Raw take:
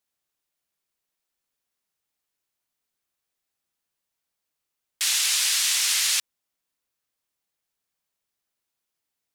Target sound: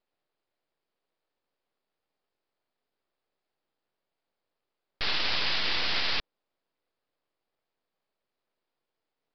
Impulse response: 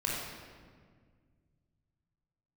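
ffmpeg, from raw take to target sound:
-af "equalizer=f=480:t=o:w=2.6:g=14.5,aeval=exprs='max(val(0),0)':c=same,aresample=11025,aresample=44100"

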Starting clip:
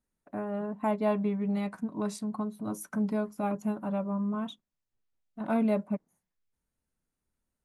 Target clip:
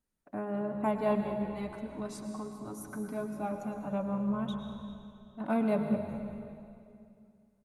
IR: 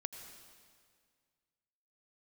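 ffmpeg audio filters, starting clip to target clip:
-filter_complex "[0:a]asettb=1/sr,asplit=3[a][b][c];[a]atrim=end=1.204[d];[b]atrim=start=1.2:end=3.93,asetpts=PTS-STARTPTS,afade=t=in:d=0.004:c=qsin,afade=t=out:st=2.726:d=0.004:c=qsin,flanger=delay=6:depth=2.1:regen=34:speed=1.8:shape=triangular[e];[c]atrim=start=3.926[f];[d][e]acrossfade=d=0.004:c1=hsin:c2=qsin[g];[g][f]acrossfade=d=0.004:c1=qsin:c2=hsin,asplit=5[h][i][j][k][l];[i]adelay=198,afreqshift=-65,volume=-17dB[m];[j]adelay=396,afreqshift=-130,volume=-23.7dB[n];[k]adelay=594,afreqshift=-195,volume=-30.5dB[o];[l]adelay=792,afreqshift=-260,volume=-37.2dB[p];[h][m][n][o][p]amix=inputs=5:normalize=0[q];[1:a]atrim=start_sample=2205,asetrate=34398,aresample=44100[r];[q][r]afir=irnorm=-1:irlink=0"

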